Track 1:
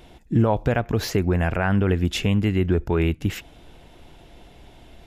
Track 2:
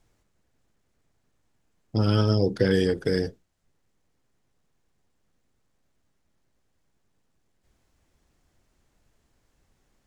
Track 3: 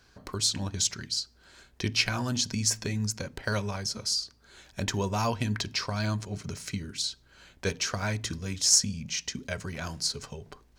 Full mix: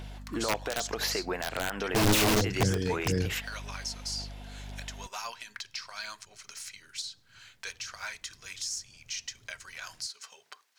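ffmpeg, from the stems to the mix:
ffmpeg -i stem1.wav -i stem2.wav -i stem3.wav -filter_complex "[0:a]highpass=610,aeval=exprs='val(0)+0.00631*(sin(2*PI*50*n/s)+sin(2*PI*2*50*n/s)/2+sin(2*PI*3*50*n/s)/3+sin(2*PI*4*50*n/s)/4+sin(2*PI*5*50*n/s)/5)':channel_layout=same,volume=1dB[link_01];[1:a]acompressor=threshold=-30dB:ratio=2,equalizer=frequency=110:width=1.6:gain=14.5,volume=0.5dB[link_02];[2:a]highpass=1400,acompressor=threshold=-32dB:ratio=3,alimiter=level_in=4dB:limit=-24dB:level=0:latency=1:release=383,volume=-4dB,volume=2.5dB[link_03];[link_01][link_02]amix=inputs=2:normalize=0,aeval=exprs='(mod(4.73*val(0)+1,2)-1)/4.73':channel_layout=same,alimiter=limit=-21dB:level=0:latency=1:release=117,volume=0dB[link_04];[link_03][link_04]amix=inputs=2:normalize=0,aphaser=in_gain=1:out_gain=1:delay=4.5:decay=0.3:speed=1.9:type=sinusoidal" out.wav

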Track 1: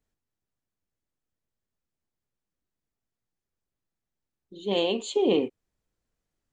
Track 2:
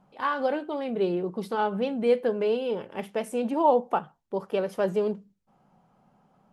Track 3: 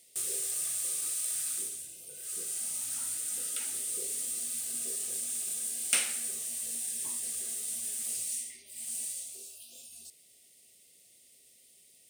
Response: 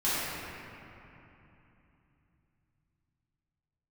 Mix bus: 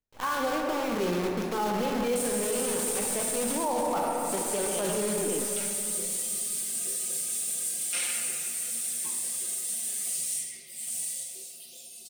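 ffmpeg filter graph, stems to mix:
-filter_complex "[0:a]volume=-10dB[link_01];[1:a]adynamicequalizer=threshold=0.0178:dfrequency=370:dqfactor=1.5:tfrequency=370:tqfactor=1.5:attack=5:release=100:ratio=0.375:range=1.5:mode=cutabove:tftype=bell,acrusher=bits=6:dc=4:mix=0:aa=0.000001,volume=-3.5dB,asplit=2[link_02][link_03];[link_03]volume=-10dB[link_04];[2:a]aecho=1:1:5.7:0.84,adelay=2000,volume=0dB,asplit=2[link_05][link_06];[link_06]volume=-15.5dB[link_07];[3:a]atrim=start_sample=2205[link_08];[link_04][link_07]amix=inputs=2:normalize=0[link_09];[link_09][link_08]afir=irnorm=-1:irlink=0[link_10];[link_01][link_02][link_05][link_10]amix=inputs=4:normalize=0,alimiter=limit=-20dB:level=0:latency=1:release=11"

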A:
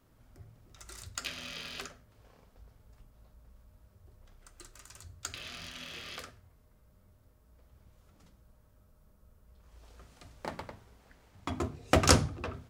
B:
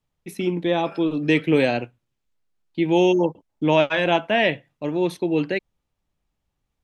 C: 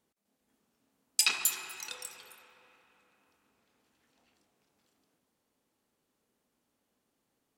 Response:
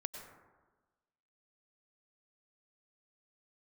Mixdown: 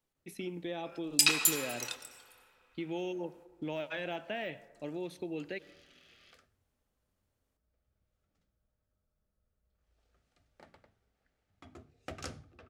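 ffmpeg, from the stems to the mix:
-filter_complex "[0:a]highshelf=frequency=5800:gain=-7,adelay=150,volume=-16dB[link_01];[1:a]deesser=0.75,volume=-10dB,asplit=3[link_02][link_03][link_04];[link_03]volume=-17.5dB[link_05];[2:a]volume=-1.5dB,asplit=2[link_06][link_07];[link_07]volume=-3.5dB[link_08];[link_04]apad=whole_len=333888[link_09];[link_06][link_09]sidechaingate=range=-33dB:threshold=-49dB:ratio=16:detection=peak[link_10];[link_01][link_02]amix=inputs=2:normalize=0,equalizer=frequency=1000:width_type=o:width=0.21:gain=-12.5,acompressor=threshold=-35dB:ratio=6,volume=0dB[link_11];[3:a]atrim=start_sample=2205[link_12];[link_05][link_08]amix=inputs=2:normalize=0[link_13];[link_13][link_12]afir=irnorm=-1:irlink=0[link_14];[link_10][link_11][link_14]amix=inputs=3:normalize=0,lowshelf=frequency=440:gain=-4"

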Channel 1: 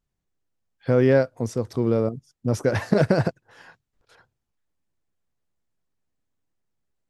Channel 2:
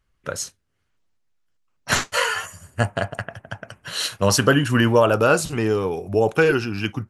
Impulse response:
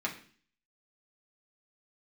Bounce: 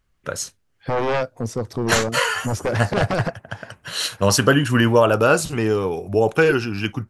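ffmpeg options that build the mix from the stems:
-filter_complex "[0:a]aeval=exprs='0.531*sin(PI/2*3.55*val(0)/0.531)':channel_layout=same,volume=-11.5dB[link_01];[1:a]volume=1dB[link_02];[link_01][link_02]amix=inputs=2:normalize=0"

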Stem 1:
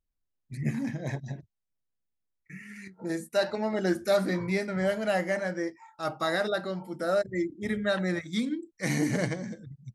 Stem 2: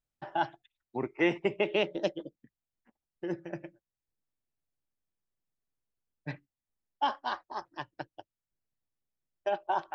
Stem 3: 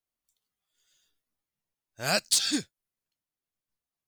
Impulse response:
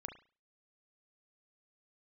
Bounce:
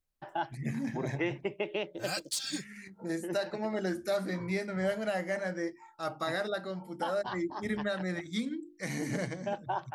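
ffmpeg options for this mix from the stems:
-filter_complex "[0:a]bandreject=frequency=50:width_type=h:width=6,bandreject=frequency=100:width_type=h:width=6,bandreject=frequency=150:width_type=h:width=6,bandreject=frequency=200:width_type=h:width=6,bandreject=frequency=250:width_type=h:width=6,bandreject=frequency=300:width_type=h:width=6,bandreject=frequency=350:width_type=h:width=6,volume=-2.5dB[link_01];[1:a]volume=-3dB[link_02];[2:a]asplit=2[link_03][link_04];[link_04]adelay=3.3,afreqshift=0.42[link_05];[link_03][link_05]amix=inputs=2:normalize=1,volume=-2.5dB[link_06];[link_01][link_02][link_06]amix=inputs=3:normalize=0,alimiter=limit=-22dB:level=0:latency=1:release=465"

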